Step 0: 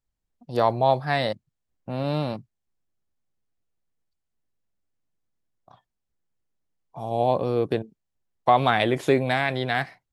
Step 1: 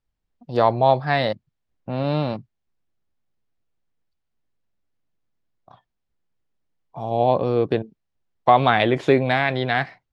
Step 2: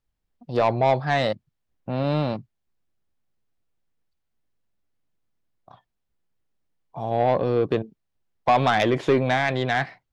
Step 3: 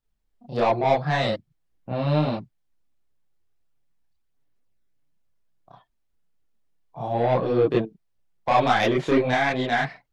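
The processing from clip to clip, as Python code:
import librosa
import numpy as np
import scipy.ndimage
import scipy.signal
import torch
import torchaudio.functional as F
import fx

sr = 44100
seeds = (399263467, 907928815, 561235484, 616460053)

y1 = scipy.signal.sosfilt(scipy.signal.butter(2, 4500.0, 'lowpass', fs=sr, output='sos'), x)
y1 = y1 * librosa.db_to_amplitude(3.5)
y2 = 10.0 ** (-11.5 / 20.0) * np.tanh(y1 / 10.0 ** (-11.5 / 20.0))
y3 = fx.chorus_voices(y2, sr, voices=4, hz=0.82, base_ms=30, depth_ms=3.7, mix_pct=60)
y3 = y3 * librosa.db_to_amplitude(3.0)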